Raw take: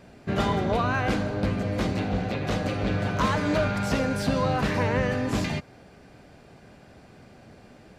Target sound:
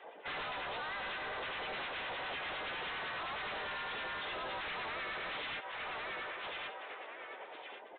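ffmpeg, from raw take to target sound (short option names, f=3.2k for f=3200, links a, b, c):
-filter_complex "[0:a]afftdn=nr=21:nf=-48,acrossover=split=1200[a][b];[b]aeval=exprs='0.0944*sin(PI/2*2.51*val(0)/0.0944)':c=same[c];[a][c]amix=inputs=2:normalize=0,acrossover=split=1300[d][e];[d]aeval=exprs='val(0)*(1-0.7/2+0.7/2*cos(2*PI*9.8*n/s))':c=same[f];[e]aeval=exprs='val(0)*(1-0.7/2-0.7/2*cos(2*PI*9.8*n/s))':c=same[g];[f][g]amix=inputs=2:normalize=0,highpass=f=590:w=0.5412,highpass=f=590:w=1.3066,aecho=1:1:1103|2206:0.0891|0.0258,acompressor=threshold=-41dB:ratio=10,asplit=4[h][i][j][k];[i]asetrate=29433,aresample=44100,atempo=1.49831,volume=-5dB[l];[j]asetrate=33038,aresample=44100,atempo=1.33484,volume=-3dB[m];[k]asetrate=55563,aresample=44100,atempo=0.793701,volume=0dB[n];[h][l][m][n]amix=inputs=4:normalize=0,acontrast=64,aresample=8000,asoftclip=type=hard:threshold=-39dB,aresample=44100"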